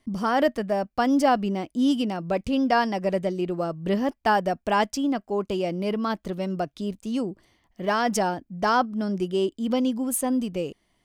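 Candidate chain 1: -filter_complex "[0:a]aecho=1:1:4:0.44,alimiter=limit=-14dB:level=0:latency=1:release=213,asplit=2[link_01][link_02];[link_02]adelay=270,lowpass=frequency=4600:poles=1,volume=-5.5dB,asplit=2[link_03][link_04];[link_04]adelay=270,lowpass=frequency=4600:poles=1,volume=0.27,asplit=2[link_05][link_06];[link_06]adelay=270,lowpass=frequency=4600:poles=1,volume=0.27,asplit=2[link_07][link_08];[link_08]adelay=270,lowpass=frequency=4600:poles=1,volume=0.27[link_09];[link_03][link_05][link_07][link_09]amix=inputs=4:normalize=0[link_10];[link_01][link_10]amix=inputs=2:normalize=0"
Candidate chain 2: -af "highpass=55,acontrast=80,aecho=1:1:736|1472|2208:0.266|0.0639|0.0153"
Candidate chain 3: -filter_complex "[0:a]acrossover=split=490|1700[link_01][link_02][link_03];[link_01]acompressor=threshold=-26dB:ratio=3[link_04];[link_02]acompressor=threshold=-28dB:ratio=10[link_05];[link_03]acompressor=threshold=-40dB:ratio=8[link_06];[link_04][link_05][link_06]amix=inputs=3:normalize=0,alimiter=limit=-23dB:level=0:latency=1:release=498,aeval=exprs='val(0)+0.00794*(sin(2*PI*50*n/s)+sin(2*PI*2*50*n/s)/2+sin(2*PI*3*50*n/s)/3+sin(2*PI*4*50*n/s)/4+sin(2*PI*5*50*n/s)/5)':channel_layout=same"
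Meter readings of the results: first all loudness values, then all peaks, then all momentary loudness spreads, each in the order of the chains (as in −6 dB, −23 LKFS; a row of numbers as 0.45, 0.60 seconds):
−24.5, −18.5, −33.5 LKFS; −10.5, −4.5, −21.5 dBFS; 6, 7, 4 LU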